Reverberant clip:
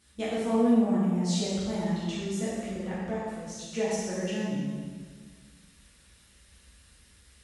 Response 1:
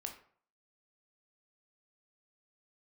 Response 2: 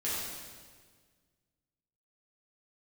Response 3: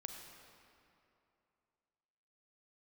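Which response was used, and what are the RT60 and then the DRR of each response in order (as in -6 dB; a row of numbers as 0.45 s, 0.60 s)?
2; 0.55 s, 1.6 s, 2.8 s; 3.0 dB, -9.5 dB, 3.5 dB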